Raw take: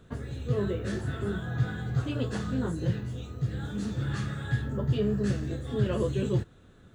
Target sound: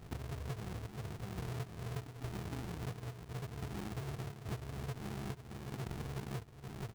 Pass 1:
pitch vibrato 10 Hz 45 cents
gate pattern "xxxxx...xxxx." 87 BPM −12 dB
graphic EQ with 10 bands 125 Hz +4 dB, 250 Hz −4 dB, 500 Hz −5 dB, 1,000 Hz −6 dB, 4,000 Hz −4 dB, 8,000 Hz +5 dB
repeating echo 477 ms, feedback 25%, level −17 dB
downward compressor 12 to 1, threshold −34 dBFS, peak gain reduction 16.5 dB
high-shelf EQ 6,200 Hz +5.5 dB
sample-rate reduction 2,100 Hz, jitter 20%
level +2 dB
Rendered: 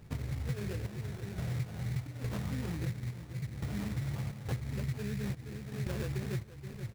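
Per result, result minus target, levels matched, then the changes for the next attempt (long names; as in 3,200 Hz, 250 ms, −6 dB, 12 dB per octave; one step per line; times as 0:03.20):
sample-rate reduction: distortion −11 dB; downward compressor: peak gain reduction −6.5 dB
change: sample-rate reduction 560 Hz, jitter 20%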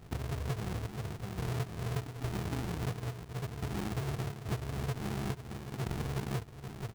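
downward compressor: peak gain reduction −6.5 dB
change: downward compressor 12 to 1, threshold −41 dBFS, peak gain reduction 23 dB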